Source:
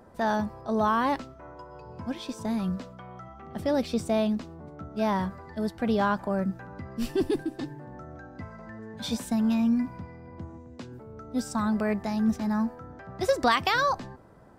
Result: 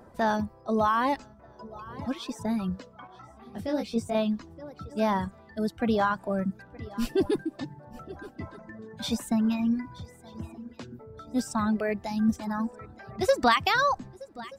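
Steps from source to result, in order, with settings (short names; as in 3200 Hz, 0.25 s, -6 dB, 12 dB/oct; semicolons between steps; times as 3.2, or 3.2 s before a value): swung echo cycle 1.228 s, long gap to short 3:1, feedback 35%, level -18 dB; reverb removal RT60 1.8 s; 3.07–4.15 detuned doubles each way 34 cents; gain +1.5 dB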